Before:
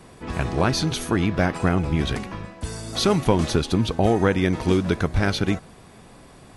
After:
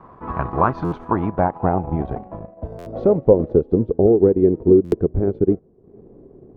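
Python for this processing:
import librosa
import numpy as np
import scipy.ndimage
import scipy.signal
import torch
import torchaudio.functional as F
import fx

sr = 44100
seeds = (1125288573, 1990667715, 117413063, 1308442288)

y = fx.transient(x, sr, attack_db=1, sustain_db=-11)
y = fx.filter_sweep_lowpass(y, sr, from_hz=1100.0, to_hz=400.0, start_s=0.72, end_s=4.18, q=4.3)
y = fx.buffer_glitch(y, sr, at_s=(0.84, 2.78, 4.84), block=512, repeats=6)
y = F.gain(torch.from_numpy(y), -1.0).numpy()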